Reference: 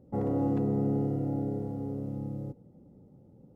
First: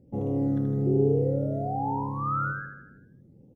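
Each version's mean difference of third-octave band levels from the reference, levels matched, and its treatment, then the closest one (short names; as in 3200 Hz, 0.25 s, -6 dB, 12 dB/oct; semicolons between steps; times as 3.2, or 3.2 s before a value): 4.5 dB: painted sound rise, 0.86–2.66, 360–1700 Hz -26 dBFS; phaser stages 12, 1.2 Hz, lowest notch 790–1600 Hz; on a send: feedback echo 79 ms, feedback 55%, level -6.5 dB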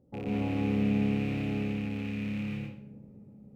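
7.5 dB: rattling part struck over -34 dBFS, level -29 dBFS; on a send: dark delay 0.345 s, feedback 63%, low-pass 560 Hz, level -17.5 dB; on the sum: plate-style reverb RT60 0.61 s, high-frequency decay 0.8×, pre-delay 0.12 s, DRR -5 dB; gain -7.5 dB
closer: first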